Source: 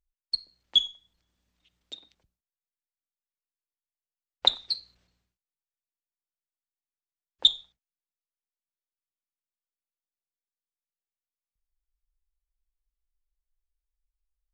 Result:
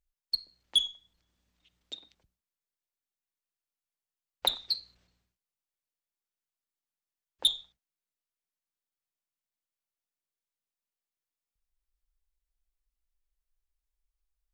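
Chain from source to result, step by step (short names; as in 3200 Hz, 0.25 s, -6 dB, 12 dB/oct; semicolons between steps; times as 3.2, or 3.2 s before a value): soft clip -17 dBFS, distortion -10 dB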